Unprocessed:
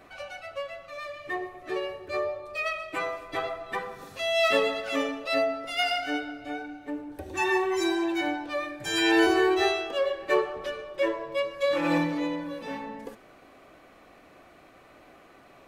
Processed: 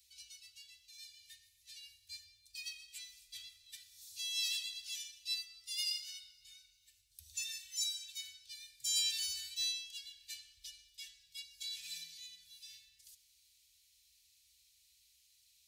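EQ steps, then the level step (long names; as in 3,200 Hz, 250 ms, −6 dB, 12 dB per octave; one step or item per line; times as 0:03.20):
high-pass filter 140 Hz 12 dB per octave
inverse Chebyshev band-stop filter 250–990 Hz, stop band 80 dB
notch filter 1,200 Hz, Q 24
+3.5 dB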